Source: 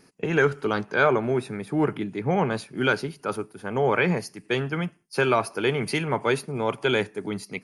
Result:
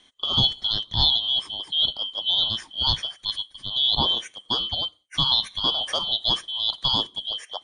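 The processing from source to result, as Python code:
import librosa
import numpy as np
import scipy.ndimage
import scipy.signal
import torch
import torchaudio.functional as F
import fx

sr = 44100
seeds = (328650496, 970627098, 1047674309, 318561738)

y = fx.band_shuffle(x, sr, order='2413')
y = scipy.signal.sosfilt(scipy.signal.butter(16, 9300.0, 'lowpass', fs=sr, output='sos'), y)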